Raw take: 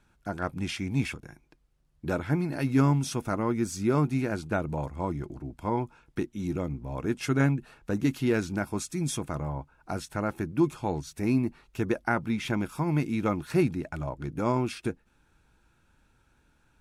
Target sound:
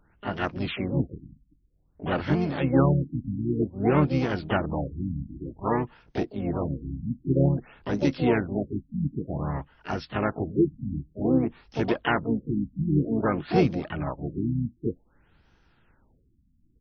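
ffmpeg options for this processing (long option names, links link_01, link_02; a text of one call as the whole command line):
ffmpeg -i in.wav -filter_complex "[0:a]asplit=4[link_01][link_02][link_03][link_04];[link_02]asetrate=22050,aresample=44100,atempo=2,volume=-15dB[link_05];[link_03]asetrate=55563,aresample=44100,atempo=0.793701,volume=-6dB[link_06];[link_04]asetrate=88200,aresample=44100,atempo=0.5,volume=-8dB[link_07];[link_01][link_05][link_06][link_07]amix=inputs=4:normalize=0,afftfilt=real='re*lt(b*sr/1024,280*pow(6500/280,0.5+0.5*sin(2*PI*0.53*pts/sr)))':imag='im*lt(b*sr/1024,280*pow(6500/280,0.5+0.5*sin(2*PI*0.53*pts/sr)))':win_size=1024:overlap=0.75,volume=1.5dB" out.wav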